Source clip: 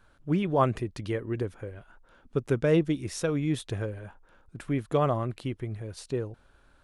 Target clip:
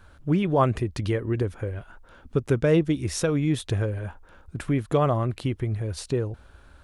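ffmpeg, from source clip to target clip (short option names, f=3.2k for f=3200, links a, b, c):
-filter_complex "[0:a]equalizer=f=72:t=o:w=0.8:g=10,asplit=2[a][b];[b]acompressor=threshold=-32dB:ratio=6,volume=2.5dB[c];[a][c]amix=inputs=2:normalize=0"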